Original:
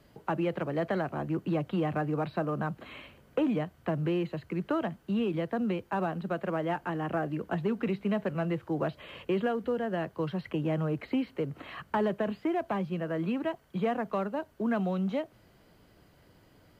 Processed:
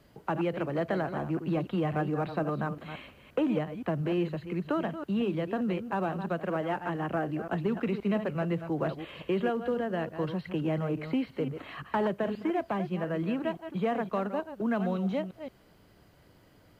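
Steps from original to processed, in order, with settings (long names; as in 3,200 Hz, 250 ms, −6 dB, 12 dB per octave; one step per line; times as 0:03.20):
delay that plays each chunk backwards 174 ms, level −9.5 dB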